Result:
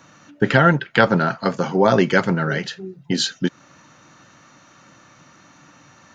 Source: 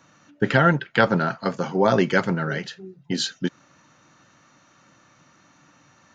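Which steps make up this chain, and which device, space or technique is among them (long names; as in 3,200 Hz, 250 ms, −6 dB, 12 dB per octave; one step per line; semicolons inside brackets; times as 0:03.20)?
parallel compression (in parallel at −3 dB: downward compressor, threshold −29 dBFS, peak gain reduction 16 dB)
on the sum: level +2 dB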